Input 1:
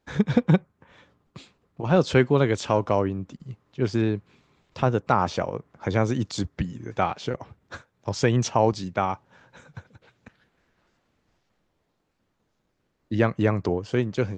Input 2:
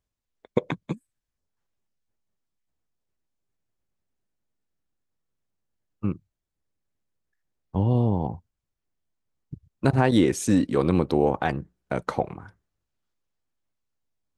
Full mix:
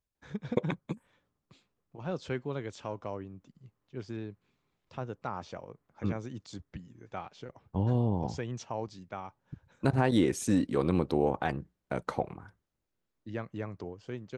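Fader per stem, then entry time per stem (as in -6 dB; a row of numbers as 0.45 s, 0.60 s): -16.0 dB, -6.0 dB; 0.15 s, 0.00 s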